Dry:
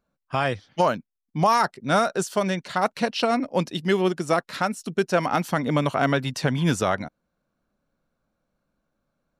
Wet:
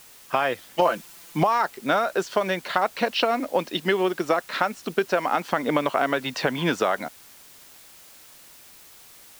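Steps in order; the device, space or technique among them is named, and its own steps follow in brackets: baby monitor (BPF 340–3600 Hz; compressor, threshold -26 dBFS, peak gain reduction 10.5 dB; white noise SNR 23 dB); 0.81–1.43 comb 5.9 ms, depth 87%; gain +7.5 dB

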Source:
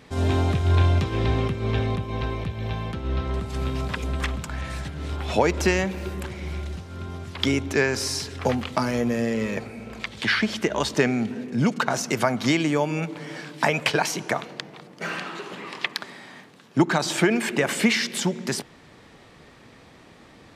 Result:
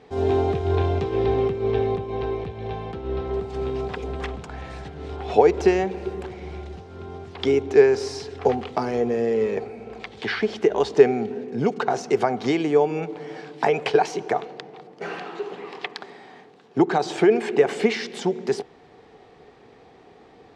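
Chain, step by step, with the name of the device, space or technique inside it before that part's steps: dynamic EQ 400 Hz, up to +4 dB, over -39 dBFS, Q 3.9; inside a cardboard box (LPF 5900 Hz 12 dB/oct; small resonant body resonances 430/740 Hz, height 14 dB, ringing for 30 ms); gain -6 dB

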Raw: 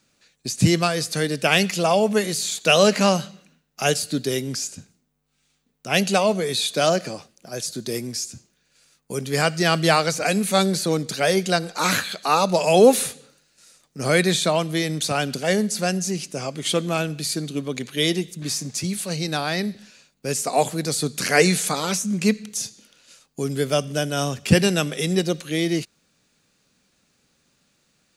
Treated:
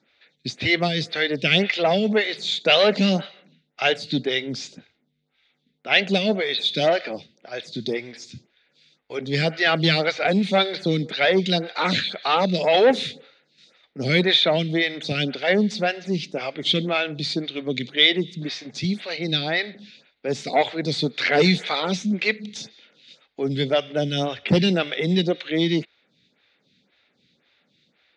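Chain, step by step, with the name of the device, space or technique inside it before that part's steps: vibe pedal into a guitar amplifier (photocell phaser 1.9 Hz; tube stage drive 14 dB, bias 0.2; speaker cabinet 96–4400 Hz, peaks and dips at 1100 Hz -7 dB, 2100 Hz +8 dB, 3600 Hz +10 dB); gain +4 dB

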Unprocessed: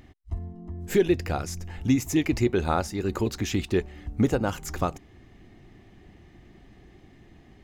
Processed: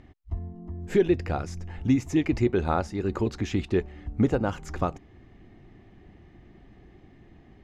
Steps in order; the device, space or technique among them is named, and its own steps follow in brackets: through cloth (LPF 8800 Hz 12 dB/oct; high shelf 3600 Hz -11 dB)

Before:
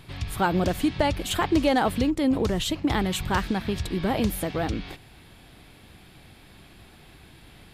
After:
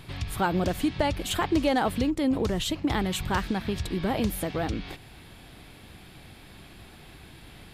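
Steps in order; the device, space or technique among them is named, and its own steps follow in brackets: parallel compression (in parallel at -1 dB: compressor, threshold -37 dBFS, peak gain reduction 18.5 dB); on the sum: gain -3.5 dB

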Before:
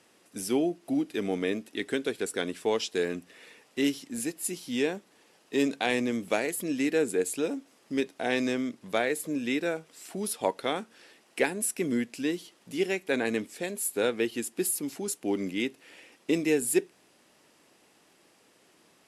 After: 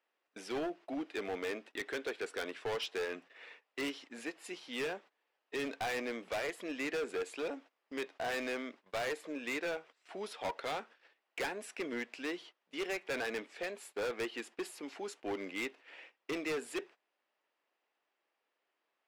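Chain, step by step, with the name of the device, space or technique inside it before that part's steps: walkie-talkie (BPF 600–2800 Hz; hard clip -34.5 dBFS, distortion -5 dB; gate -55 dBFS, range -19 dB); gain +1.5 dB

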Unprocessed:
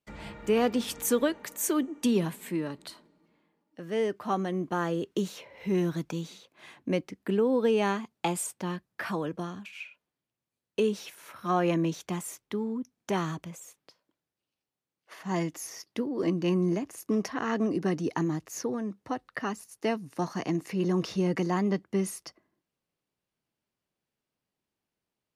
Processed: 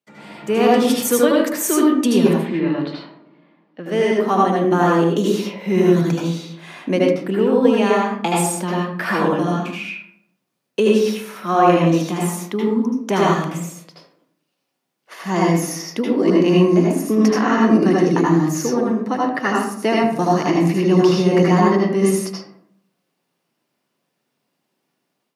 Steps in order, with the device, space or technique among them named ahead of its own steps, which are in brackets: 2.33–3.86 LPF 4000 Hz 24 dB/oct; far laptop microphone (reverb RT60 0.65 s, pre-delay 72 ms, DRR -4 dB; HPF 150 Hz 24 dB/oct; AGC gain up to 9.5 dB)

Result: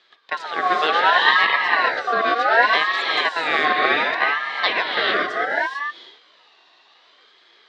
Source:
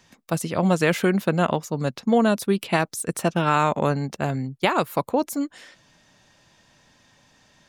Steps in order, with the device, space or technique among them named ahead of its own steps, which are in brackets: non-linear reverb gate 0.47 s rising, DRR -3 dB; voice changer toy (ring modulator with a swept carrier 1200 Hz, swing 25%, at 0.67 Hz; speaker cabinet 540–3900 Hz, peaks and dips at 570 Hz -4 dB, 850 Hz -7 dB, 1400 Hz -8 dB, 2400 Hz -5 dB, 3900 Hz +6 dB); gain +6 dB

